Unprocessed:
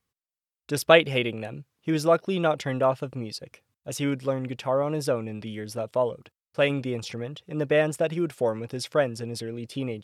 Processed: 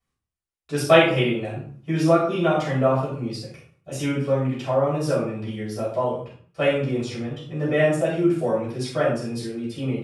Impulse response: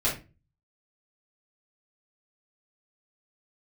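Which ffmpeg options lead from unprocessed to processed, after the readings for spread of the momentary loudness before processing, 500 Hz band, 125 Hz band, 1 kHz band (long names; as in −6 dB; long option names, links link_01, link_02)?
13 LU, +3.0 dB, +6.0 dB, +3.5 dB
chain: -filter_complex "[1:a]atrim=start_sample=2205,afade=type=out:start_time=0.29:duration=0.01,atrim=end_sample=13230,asetrate=23814,aresample=44100[link_01];[0:a][link_01]afir=irnorm=-1:irlink=0,volume=-12dB"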